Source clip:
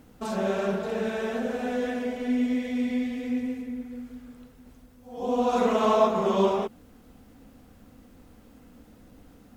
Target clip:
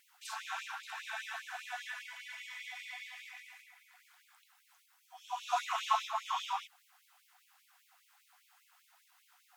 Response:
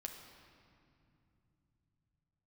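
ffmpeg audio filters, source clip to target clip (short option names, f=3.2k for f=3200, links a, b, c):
-filter_complex "[0:a]asettb=1/sr,asplit=3[a][b][c];[a]atrim=end=1.844[d];[b]atrim=start=1.84:end=2.61,asetpts=PTS-STARTPTS,afade=t=in:d=0.004:c=qsin,afade=t=out:st=0.766:d=0.004:c=qsin,asuperstop=centerf=740:order=4:qfactor=6.1[e];[c]atrim=start=2.606[f];[d][e]acrossfade=d=0.004:c1=hsin:c2=qsin[g];[g][f]acrossfade=d=0.004:c1=qsin:c2=hsin,afftfilt=real='re*gte(b*sr/1024,670*pow(2200/670,0.5+0.5*sin(2*PI*5*pts/sr)))':imag='im*gte(b*sr/1024,670*pow(2200/670,0.5+0.5*sin(2*PI*5*pts/sr)))':win_size=1024:overlap=0.75,volume=-2dB"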